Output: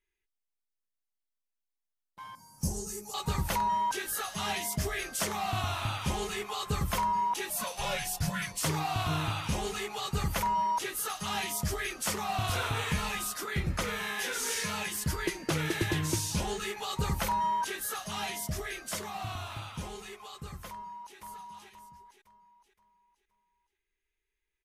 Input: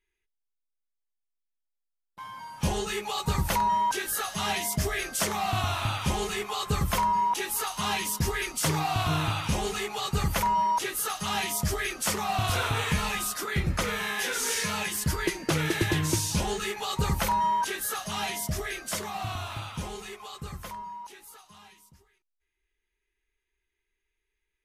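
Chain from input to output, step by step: 2.35–3.14 s: FFT filter 200 Hz 0 dB, 3.5 kHz -24 dB, 5.1 kHz +3 dB, 11 kHz +7 dB; 7.50–8.64 s: frequency shift -230 Hz; 20.69–21.17 s: echo throw 520 ms, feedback 40%, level -2.5 dB; trim -4 dB

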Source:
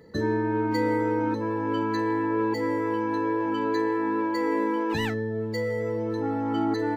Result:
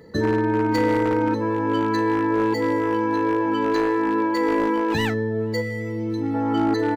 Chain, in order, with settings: one-sided wavefolder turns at -19.5 dBFS; echo from a far wall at 83 m, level -29 dB; time-frequency box 5.61–6.34 s, 370–1900 Hz -10 dB; trim +5 dB

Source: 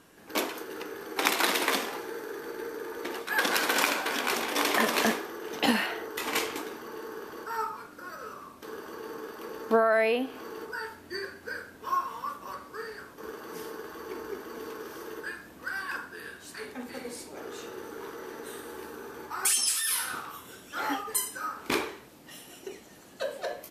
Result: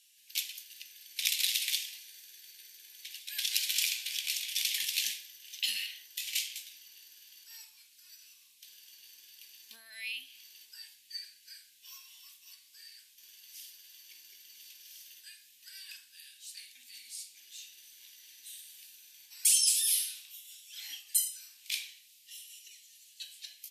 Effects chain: inverse Chebyshev high-pass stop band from 1.4 kHz, stop band 40 dB; trim +1 dB

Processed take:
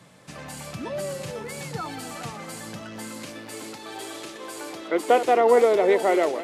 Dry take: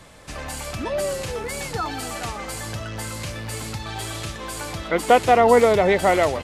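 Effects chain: chunks repeated in reverse 287 ms, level -12 dB; high-pass sweep 150 Hz -> 340 Hz, 2.25–3.83 s; trim -6.5 dB

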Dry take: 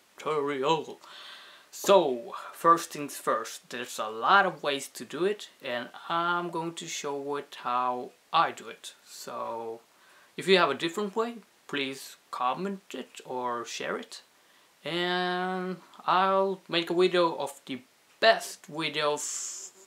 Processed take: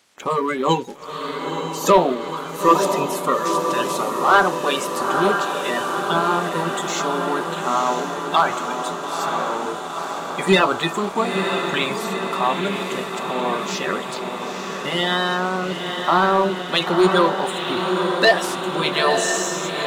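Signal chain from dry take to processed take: coarse spectral quantiser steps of 30 dB; echo that smears into a reverb 932 ms, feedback 70%, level -5.5 dB; waveshaping leveller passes 1; trim +4.5 dB

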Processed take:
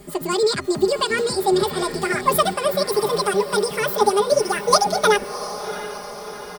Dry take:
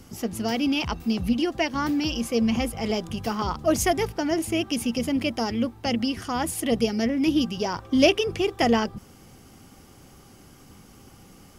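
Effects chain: gliding tape speed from 154% -> 198%; comb 4.9 ms, depth 85%; echo that smears into a reverb 704 ms, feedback 57%, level -12.5 dB; trim +2 dB

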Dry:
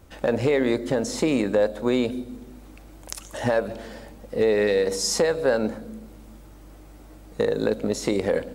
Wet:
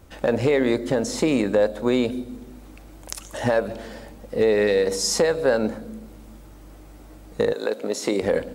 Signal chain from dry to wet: 7.52–8.21 s: high-pass 590 Hz -> 190 Hz 12 dB/octave; trim +1.5 dB

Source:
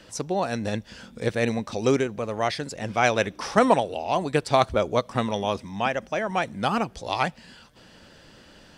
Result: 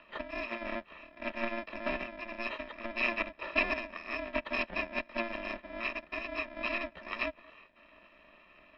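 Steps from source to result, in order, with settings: bit-reversed sample order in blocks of 128 samples; small resonant body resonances 200/850/2000 Hz, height 11 dB, ringing for 30 ms; mistuned SSB -230 Hz 350–3300 Hz

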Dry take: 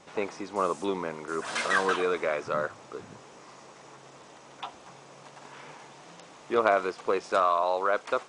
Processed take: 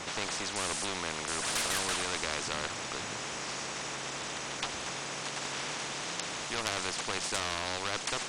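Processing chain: valve stage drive 19 dB, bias 0.3; spectrum-flattening compressor 4:1; trim +3 dB

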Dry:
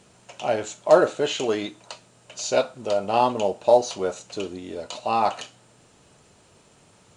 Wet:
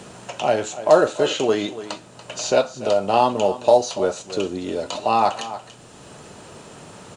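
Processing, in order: peaking EQ 2.2 kHz -4 dB 0.21 oct; delay 286 ms -16.5 dB; three bands compressed up and down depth 40%; trim +4 dB

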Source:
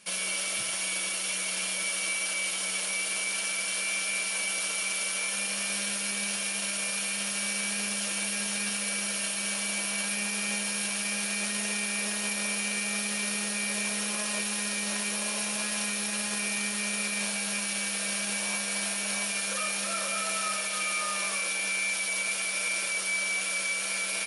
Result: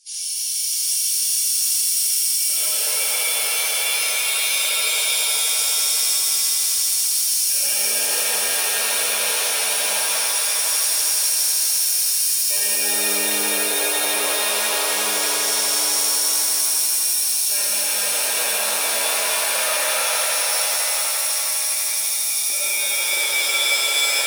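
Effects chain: coarse spectral quantiser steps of 30 dB; hum notches 50/100/150/200 Hz; LFO high-pass square 0.2 Hz 440–5400 Hz; echo with a slow build-up 83 ms, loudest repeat 5, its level -10 dB; pitch-shifted reverb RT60 3.7 s, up +7 st, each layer -2 dB, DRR -9 dB; trim -3.5 dB

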